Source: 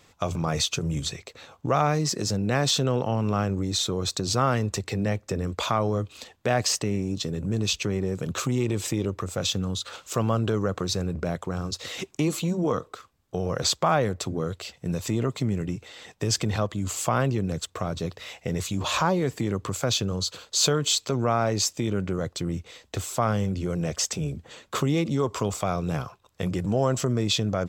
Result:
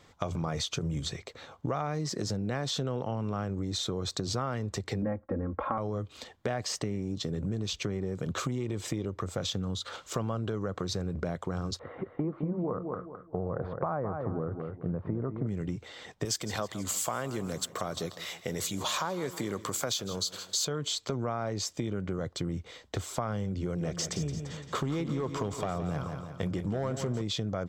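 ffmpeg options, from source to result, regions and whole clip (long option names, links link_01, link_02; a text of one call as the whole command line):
ffmpeg -i in.wav -filter_complex "[0:a]asettb=1/sr,asplit=3[link_01][link_02][link_03];[link_01]atrim=end=5.024[link_04];[link_02]atrim=start=5.02:end=5.78,asetpts=PTS-STARTPTS,afade=type=in:duration=0.004:curve=qsin,afade=type=out:start_time=0.756:duration=0.004:curve=qsin,lowpass=frequency=1600:width=0.5412,lowpass=frequency=1600:width=1.3066,aecho=1:1:3.7:0.98,atrim=end_sample=33516,agate=range=-33dB:threshold=-48dB:ratio=3:release=100:detection=peak[link_05];[link_03]atrim=start=5.776[link_06];[link_04][link_05]acrossfade=duration=0.004:curve1=hsin:curve2=qsin[link_07];[link_07][link_06]acrossfade=duration=0.004:curve1=qsin:curve2=hsin,asettb=1/sr,asplit=3[link_08][link_09][link_10];[link_08]atrim=end=11.794[link_11];[link_09]atrim=start=11.79:end=15.47,asetpts=PTS-STARTPTS,afade=type=in:duration=0.004:curve=qsin,afade=type=out:start_time=3.676:duration=0.004:curve=qsin,lowpass=frequency=1400:width=0.5412,lowpass=frequency=1400:width=1.3066,aecho=1:1:212|424|636:0.355|0.0923|0.024,atrim=end_sample=162288[link_12];[link_10]atrim=start=15.466[link_13];[link_11][link_12]acrossfade=duration=0.004:curve1=hsin:curve2=qsin[link_14];[link_14][link_13]acrossfade=duration=0.004:curve1=qsin:curve2=hsin,asettb=1/sr,asplit=3[link_15][link_16][link_17];[link_15]atrim=end=16.254[link_18];[link_16]atrim=start=16.25:end=20.65,asetpts=PTS-STARTPTS,afade=type=in:duration=0.004:curve=qsin,afade=type=out:start_time=4.396:duration=0.004:curve=qsin,aemphasis=mode=production:type=bsi,aecho=1:1:158|316|474|632:0.126|0.0642|0.0327|0.0167,atrim=end_sample=194040[link_19];[link_17]atrim=start=20.646[link_20];[link_18][link_19]acrossfade=duration=0.004:curve1=hsin:curve2=qsin[link_21];[link_21][link_20]acrossfade=duration=0.004:curve1=qsin:curve2=hsin,asettb=1/sr,asplit=3[link_22][link_23][link_24];[link_22]atrim=end=23.614[link_25];[link_23]atrim=start=23.61:end=27.22,asetpts=PTS-STARTPTS,afade=type=in:duration=0.004:curve=qsin,afade=type=out:start_time=3.606:duration=0.004:curve=qsin,asoftclip=type=hard:threshold=-18dB,aecho=1:1:171|342|513|684|855:0.316|0.149|0.0699|0.0328|0.0154,atrim=end_sample=159201[link_26];[link_24]atrim=start=27.216[link_27];[link_25][link_26]acrossfade=duration=0.004:curve1=hsin:curve2=qsin[link_28];[link_28][link_27]acrossfade=duration=0.004:curve1=qsin:curve2=hsin,lowpass=frequency=4000:poles=1,bandreject=frequency=2600:width=9.7,acompressor=threshold=-29dB:ratio=5" out.wav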